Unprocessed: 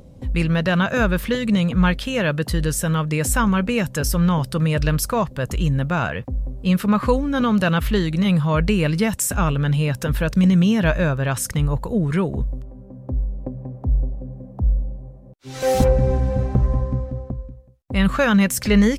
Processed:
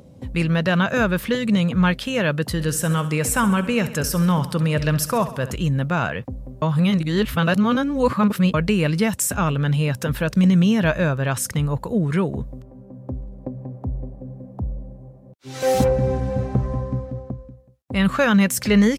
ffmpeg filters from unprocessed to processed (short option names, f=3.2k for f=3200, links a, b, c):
-filter_complex "[0:a]asplit=3[a][b][c];[a]afade=t=out:st=2.58:d=0.02[d];[b]aecho=1:1:67|134|201|268|335|402:0.2|0.114|0.0648|0.037|0.0211|0.012,afade=t=in:st=2.58:d=0.02,afade=t=out:st=5.54:d=0.02[e];[c]afade=t=in:st=5.54:d=0.02[f];[d][e][f]amix=inputs=3:normalize=0,asplit=3[g][h][i];[g]atrim=end=6.622[j];[h]atrim=start=6.618:end=8.542,asetpts=PTS-STARTPTS,areverse[k];[i]atrim=start=8.538[l];[j][k]acrossfade=d=0.004:c1=hsin:c2=hsin[m];[m][l]acrossfade=d=0.004:c1=hsin:c2=hsin,highpass=93"